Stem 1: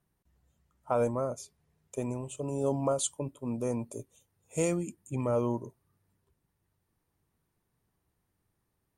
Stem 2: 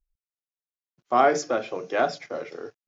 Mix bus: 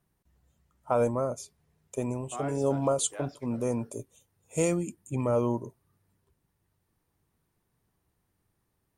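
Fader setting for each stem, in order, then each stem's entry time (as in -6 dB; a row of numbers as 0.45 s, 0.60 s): +2.5 dB, -18.5 dB; 0.00 s, 1.20 s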